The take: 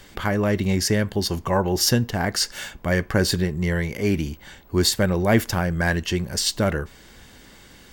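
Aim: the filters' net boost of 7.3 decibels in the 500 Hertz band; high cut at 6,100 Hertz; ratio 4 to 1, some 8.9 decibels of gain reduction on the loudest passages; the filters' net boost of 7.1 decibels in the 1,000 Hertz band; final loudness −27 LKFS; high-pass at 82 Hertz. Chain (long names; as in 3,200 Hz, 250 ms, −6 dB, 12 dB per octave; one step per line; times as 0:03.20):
high-pass filter 82 Hz
low-pass filter 6,100 Hz
parametric band 500 Hz +7.5 dB
parametric band 1,000 Hz +6.5 dB
downward compressor 4 to 1, threshold −20 dBFS
level −2 dB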